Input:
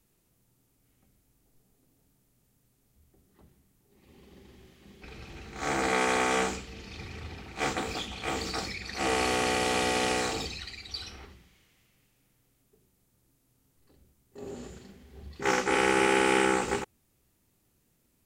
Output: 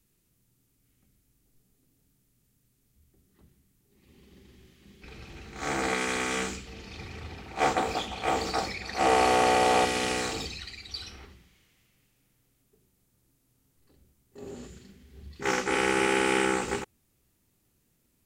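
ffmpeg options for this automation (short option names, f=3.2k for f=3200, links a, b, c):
-af "asetnsamples=n=441:p=0,asendcmd='5.06 equalizer g -1.5;5.94 equalizer g -8.5;6.66 equalizer g 2;7.51 equalizer g 9;9.85 equalizer g -2.5;14.66 equalizer g -10;15.41 equalizer g -2.5',equalizer=f=730:t=o:w=1.5:g=-8"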